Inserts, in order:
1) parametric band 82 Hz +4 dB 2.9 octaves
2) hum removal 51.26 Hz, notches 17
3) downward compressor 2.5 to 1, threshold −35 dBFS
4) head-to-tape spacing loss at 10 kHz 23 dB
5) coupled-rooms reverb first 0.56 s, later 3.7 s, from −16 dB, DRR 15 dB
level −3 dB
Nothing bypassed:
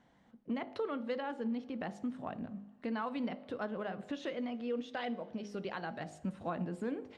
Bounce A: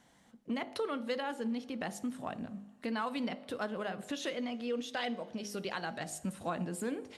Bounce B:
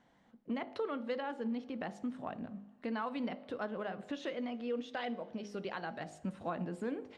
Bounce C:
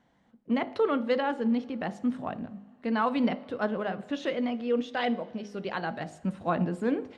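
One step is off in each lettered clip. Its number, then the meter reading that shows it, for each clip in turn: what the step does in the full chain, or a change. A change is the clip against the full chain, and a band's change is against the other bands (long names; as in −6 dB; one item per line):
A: 4, 4 kHz band +6.5 dB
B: 1, 125 Hz band −2.0 dB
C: 3, average gain reduction 7.0 dB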